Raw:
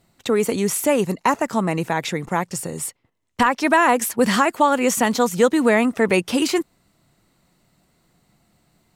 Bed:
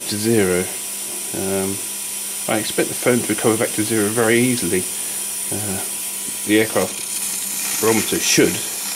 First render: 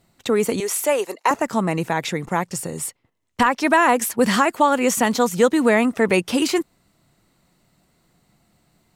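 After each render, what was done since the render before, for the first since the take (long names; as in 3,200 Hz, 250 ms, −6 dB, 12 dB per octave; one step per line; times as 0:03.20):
0:00.60–0:01.31: high-pass filter 380 Hz 24 dB per octave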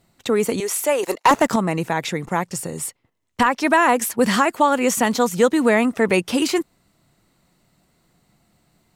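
0:01.03–0:01.56: leveller curve on the samples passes 2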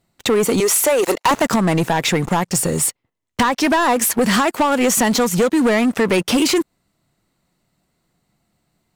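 downward compressor, threshold −20 dBFS, peak gain reduction 9.5 dB
leveller curve on the samples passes 3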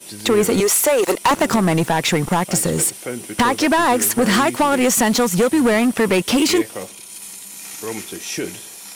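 mix in bed −11.5 dB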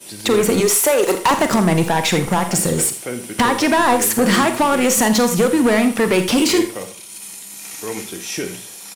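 single-tap delay 83 ms −15.5 dB
four-comb reverb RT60 0.33 s, combs from 33 ms, DRR 8.5 dB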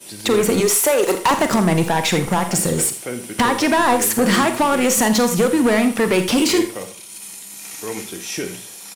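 level −1 dB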